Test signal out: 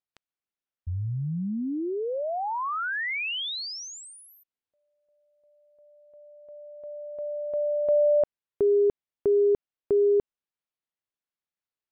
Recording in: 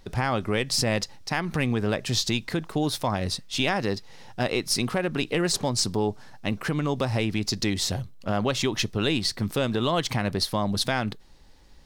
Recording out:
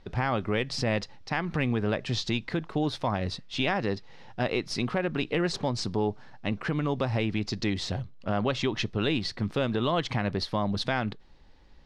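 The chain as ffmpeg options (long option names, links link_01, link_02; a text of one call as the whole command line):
ffmpeg -i in.wav -af "lowpass=3700,volume=-2dB" out.wav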